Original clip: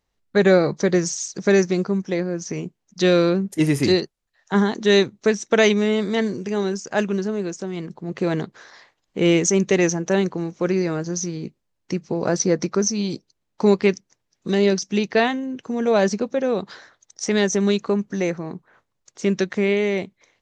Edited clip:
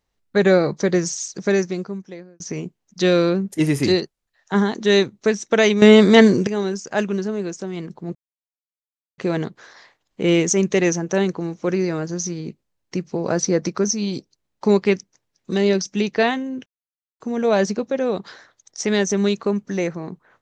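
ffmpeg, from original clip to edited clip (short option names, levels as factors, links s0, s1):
-filter_complex "[0:a]asplit=6[s0][s1][s2][s3][s4][s5];[s0]atrim=end=2.4,asetpts=PTS-STARTPTS,afade=t=out:st=1.28:d=1.12[s6];[s1]atrim=start=2.4:end=5.822,asetpts=PTS-STARTPTS,afade=t=in:d=0.004:c=hsin[s7];[s2]atrim=start=5.818:end=6.472,asetpts=PTS-STARTPTS,volume=3.55[s8];[s3]atrim=start=6.468:end=8.15,asetpts=PTS-STARTPTS,afade=t=out:st=1.678:d=0.004:c=hsin,apad=pad_dur=1.03[s9];[s4]atrim=start=8.15:end=15.63,asetpts=PTS-STARTPTS,afade=t=in:d=0.004:c=hsin,afade=t=out:st=7.476:d=0.004:c=hsin,apad=pad_dur=0.54[s10];[s5]atrim=start=15.63,asetpts=PTS-STARTPTS,afade=t=in:d=0.004:c=hsin[s11];[s6][s7]concat=n=2:v=0:a=1[s12];[s12][s8]acrossfade=d=0.004:c1=hsin:c2=hsin[s13];[s9][s10][s11]concat=n=3:v=0:a=1[s14];[s13][s14]acrossfade=d=0.004:c1=hsin:c2=hsin"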